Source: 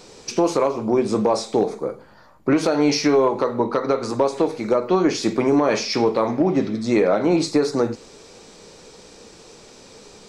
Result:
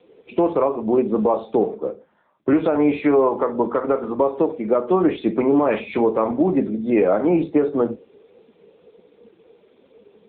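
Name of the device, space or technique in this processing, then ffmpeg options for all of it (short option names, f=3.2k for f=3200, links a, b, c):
mobile call with aggressive noise cancelling: -filter_complex "[0:a]asettb=1/sr,asplit=3[a][b][c];[a]atrim=end=5.534[d];[b]atrim=start=5.53:end=5.96,asetpts=PTS-STARTPTS,afade=t=in:d=0.004:c=qsin,afade=t=out:st=0.426:d=0.004:c=qsin,asubboost=boost=8.5:cutoff=210[e];[c]atrim=start=5.956[f];[d][e]acrossfade=d=0.004:c1=hsin:c2=qsin[g];[g][f]acrossfade=d=0.004:c1=qsin:c2=hsin,highpass=f=150:w=0.5412,highpass=f=150:w=1.3066,afftdn=nr=12:nf=-35,volume=1dB" -ar 8000 -c:a libopencore_amrnb -b:a 7950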